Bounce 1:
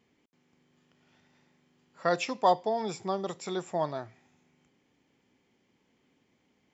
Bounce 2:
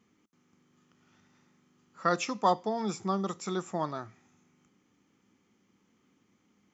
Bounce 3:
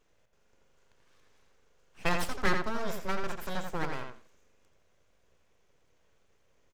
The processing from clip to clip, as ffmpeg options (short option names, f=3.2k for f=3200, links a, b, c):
-af "equalizer=f=100:t=o:w=0.33:g=6,equalizer=f=200:t=o:w=0.33:g=10,equalizer=f=315:t=o:w=0.33:g=5,equalizer=f=630:t=o:w=0.33:g=-4,equalizer=f=1.25k:t=o:w=0.33:g=11,equalizer=f=6.3k:t=o:w=0.33:g=9,volume=-2.5dB"
-filter_complex "[0:a]aeval=exprs='abs(val(0))':c=same,asplit=2[a][b];[b]adelay=85,lowpass=f=4.6k:p=1,volume=-5dB,asplit=2[c][d];[d]adelay=85,lowpass=f=4.6k:p=1,volume=0.18,asplit=2[e][f];[f]adelay=85,lowpass=f=4.6k:p=1,volume=0.18[g];[a][c][e][g]amix=inputs=4:normalize=0"